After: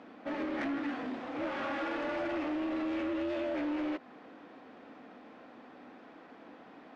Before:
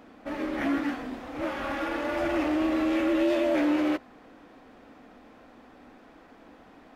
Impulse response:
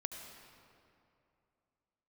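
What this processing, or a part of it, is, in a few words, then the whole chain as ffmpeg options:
AM radio: -af "highpass=160,lowpass=4.4k,acompressor=threshold=-29dB:ratio=6,asoftclip=type=tanh:threshold=-28.5dB"

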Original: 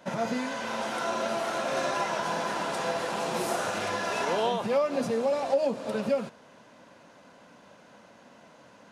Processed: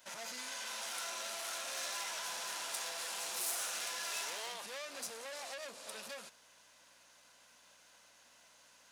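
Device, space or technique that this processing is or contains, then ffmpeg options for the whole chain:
valve amplifier with mains hum: -af "aeval=exprs='(tanh(31.6*val(0)+0.45)-tanh(0.45))/31.6':c=same,aeval=exprs='val(0)+0.002*(sin(2*PI*60*n/s)+sin(2*PI*2*60*n/s)/2+sin(2*PI*3*60*n/s)/3+sin(2*PI*4*60*n/s)/4+sin(2*PI*5*60*n/s)/5)':c=same,aderivative,volume=6dB"

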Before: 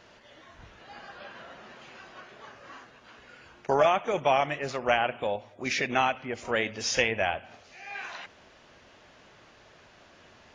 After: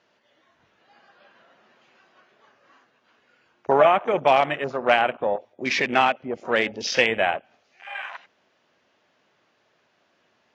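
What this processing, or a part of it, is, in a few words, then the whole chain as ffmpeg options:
over-cleaned archive recording: -af "highpass=160,lowpass=7.1k,afwtdn=0.0141,volume=6dB"

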